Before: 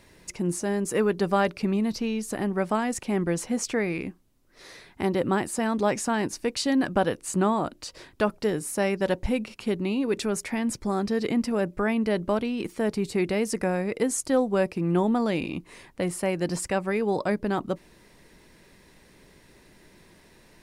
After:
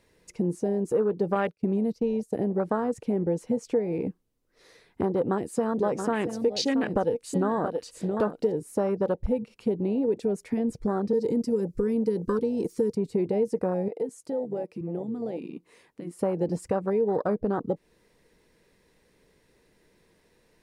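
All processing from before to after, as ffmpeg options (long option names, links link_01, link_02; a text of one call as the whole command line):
ffmpeg -i in.wav -filter_complex "[0:a]asettb=1/sr,asplit=3[link_01][link_02][link_03];[link_01]atrim=end=1.354[link_04];[link_02]atrim=start=1.35:end=2.36,asetpts=PTS-STARTPTS,afade=type=in:duration=0.004:curve=qsin,afade=type=out:start_time=1.006:duration=0.004:curve=qsin,agate=range=-33dB:threshold=-28dB:ratio=3:release=100:detection=peak,highshelf=frequency=4400:gain=6[link_05];[link_03]atrim=start=2.356[link_06];[link_04][link_05]acrossfade=duration=0.004:curve1=hsin:curve2=qsin[link_07];[link_07][link_06]acrossfade=duration=0.004:curve1=qsin:curve2=hsin,asettb=1/sr,asplit=3[link_08][link_09][link_10];[link_08]atrim=end=5.104[link_11];[link_09]atrim=start=5.1:end=8.52,asetpts=PTS-STARTPTS,afade=type=in:duration=0.004:curve=qsin,afade=type=out:start_time=3.416:duration=0.004:curve=qsin,aecho=1:1:675:0.335,atrim=end_sample=150822,adynamicequalizer=threshold=0.00891:dfrequency=1900:dqfactor=0.7:tfrequency=1900:tqfactor=0.7:attack=5:release=100:ratio=0.375:range=2.5:mode=boostabove:tftype=highshelf[link_12];[link_10]atrim=start=8.516[link_13];[link_11][link_12]acrossfade=duration=0.004:curve1=hsin:curve2=qsin[link_14];[link_14][link_13]acrossfade=duration=0.004:curve1=qsin:curve2=hsin,asettb=1/sr,asplit=3[link_15][link_16][link_17];[link_15]atrim=end=11.134[link_18];[link_16]atrim=start=11.13:end=12.95,asetpts=PTS-STARTPTS,afade=type=in:duration=0.004:curve=qsin,afade=type=out:start_time=1.816:duration=0.004:curve=qsin,asuperstop=centerf=720:order=20:qfactor=1.9,highshelf=frequency=4000:width_type=q:width=1.5:gain=9.5[link_19];[link_17]atrim=start=12.946[link_20];[link_18][link_19]acrossfade=duration=0.004:curve1=hsin:curve2=qsin[link_21];[link_21][link_20]acrossfade=duration=0.004:curve1=qsin:curve2=hsin,asettb=1/sr,asplit=3[link_22][link_23][link_24];[link_22]atrim=end=13.884[link_25];[link_23]atrim=start=13.88:end=16.19,asetpts=PTS-STARTPTS,afade=type=in:duration=0.004:curve=qsin,afade=type=out:start_time=2.306:duration=0.004:curve=qsin,highpass=frequency=210:poles=1,acompressor=threshold=-40dB:ratio=2.5:attack=3.2:release=140:knee=1:detection=peak[link_26];[link_24]atrim=start=16.186[link_27];[link_25][link_26]acrossfade=duration=0.004:curve1=hsin:curve2=qsin[link_28];[link_28][link_27]acrossfade=duration=0.004:curve1=qsin:curve2=hsin,afwtdn=0.0398,equalizer=frequency=470:width_type=o:width=0.25:gain=10,acompressor=threshold=-31dB:ratio=3,volume=6dB" out.wav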